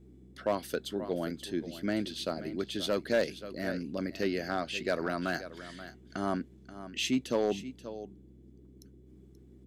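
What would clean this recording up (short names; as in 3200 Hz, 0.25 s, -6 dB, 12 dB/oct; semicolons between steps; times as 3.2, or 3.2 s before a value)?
clip repair -20.5 dBFS; de-hum 63.8 Hz, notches 3; noise print and reduce 23 dB; inverse comb 0.531 s -13.5 dB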